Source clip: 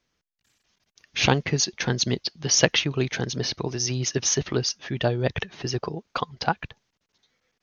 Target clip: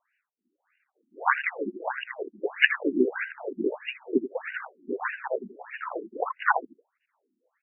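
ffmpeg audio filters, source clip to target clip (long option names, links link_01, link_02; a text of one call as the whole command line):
ffmpeg -i in.wav -filter_complex "[0:a]asplit=2[link_01][link_02];[link_02]asetrate=55563,aresample=44100,atempo=0.793701,volume=-6dB[link_03];[link_01][link_03]amix=inputs=2:normalize=0,asplit=2[link_04][link_05];[link_05]adelay=80,highpass=300,lowpass=3400,asoftclip=type=hard:threshold=-11dB,volume=-7dB[link_06];[link_04][link_06]amix=inputs=2:normalize=0,afftfilt=real='re*between(b*sr/1024,260*pow(2100/260,0.5+0.5*sin(2*PI*1.6*pts/sr))/1.41,260*pow(2100/260,0.5+0.5*sin(2*PI*1.6*pts/sr))*1.41)':imag='im*between(b*sr/1024,260*pow(2100/260,0.5+0.5*sin(2*PI*1.6*pts/sr))/1.41,260*pow(2100/260,0.5+0.5*sin(2*PI*1.6*pts/sr))*1.41)':win_size=1024:overlap=0.75,volume=5.5dB" out.wav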